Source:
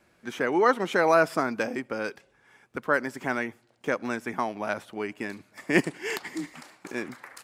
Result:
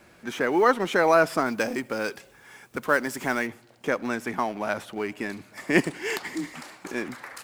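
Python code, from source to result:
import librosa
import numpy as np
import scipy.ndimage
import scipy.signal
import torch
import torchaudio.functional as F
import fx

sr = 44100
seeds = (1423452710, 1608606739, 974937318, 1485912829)

y = fx.law_mismatch(x, sr, coded='mu')
y = fx.high_shelf(y, sr, hz=5400.0, db=9.0, at=(1.46, 3.47))
y = y * librosa.db_to_amplitude(1.0)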